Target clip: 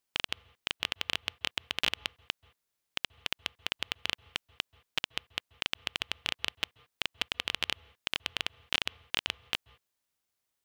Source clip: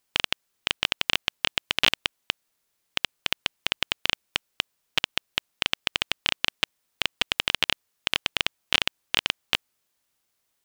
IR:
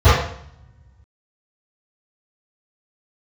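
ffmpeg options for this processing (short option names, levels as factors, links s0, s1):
-filter_complex "[0:a]asplit=2[s0][s1];[1:a]atrim=start_sample=2205,atrim=end_sample=4410,adelay=127[s2];[s1][s2]afir=irnorm=-1:irlink=0,volume=0.00335[s3];[s0][s3]amix=inputs=2:normalize=0,volume=0.398"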